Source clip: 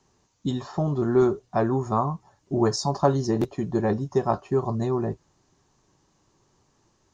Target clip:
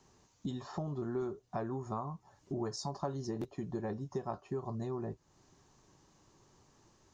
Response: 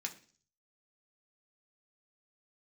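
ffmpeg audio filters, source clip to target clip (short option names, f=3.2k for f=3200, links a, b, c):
-af "acompressor=threshold=-40dB:ratio=3"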